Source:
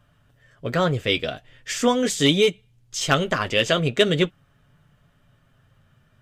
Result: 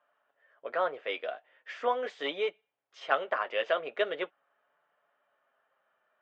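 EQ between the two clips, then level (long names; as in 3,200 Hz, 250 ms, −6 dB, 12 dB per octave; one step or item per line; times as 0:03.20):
four-pole ladder high-pass 480 Hz, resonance 25%
low-pass filter 2,000 Hz 12 dB per octave
high-frequency loss of the air 100 metres
0.0 dB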